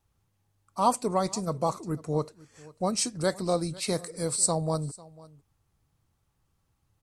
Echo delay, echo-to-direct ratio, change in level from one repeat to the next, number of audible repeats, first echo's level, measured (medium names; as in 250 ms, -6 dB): 497 ms, -21.5 dB, no regular repeats, 1, -21.5 dB